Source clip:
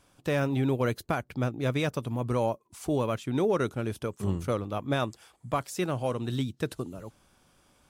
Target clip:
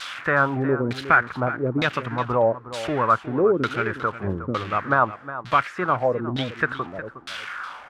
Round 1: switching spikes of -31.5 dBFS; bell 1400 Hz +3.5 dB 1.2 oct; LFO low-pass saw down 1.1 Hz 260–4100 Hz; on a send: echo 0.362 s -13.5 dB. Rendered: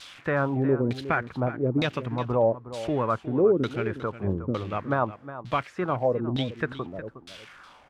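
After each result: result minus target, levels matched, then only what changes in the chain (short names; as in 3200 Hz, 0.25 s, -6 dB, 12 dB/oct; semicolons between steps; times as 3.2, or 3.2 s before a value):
switching spikes: distortion -7 dB; 1000 Hz band -4.0 dB
change: switching spikes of -24 dBFS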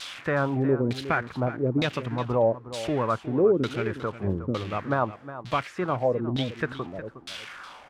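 1000 Hz band -4.0 dB
change: bell 1400 Hz +15 dB 1.2 oct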